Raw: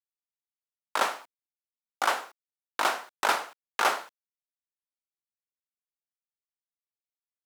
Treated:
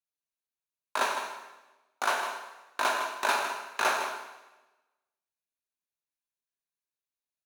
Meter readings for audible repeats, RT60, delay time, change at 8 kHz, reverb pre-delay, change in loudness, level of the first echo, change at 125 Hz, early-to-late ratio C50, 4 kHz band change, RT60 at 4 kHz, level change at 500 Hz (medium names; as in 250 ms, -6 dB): 1, 1.1 s, 157 ms, -0.5 dB, 6 ms, -1.0 dB, -9.5 dB, no reading, 4.0 dB, -1.5 dB, 1.0 s, 0.0 dB